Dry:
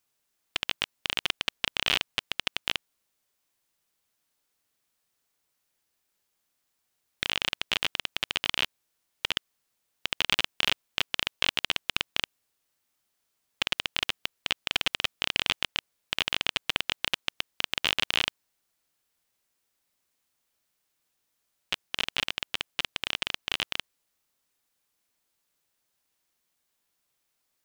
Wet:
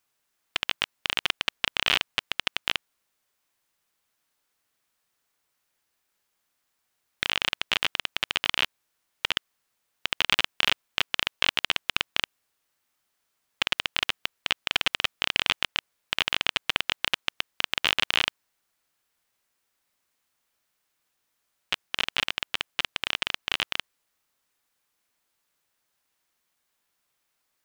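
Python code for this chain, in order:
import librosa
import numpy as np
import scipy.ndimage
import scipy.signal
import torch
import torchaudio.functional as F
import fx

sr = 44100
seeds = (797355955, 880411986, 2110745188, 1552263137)

y = fx.peak_eq(x, sr, hz=1400.0, db=4.5, octaves=2.1)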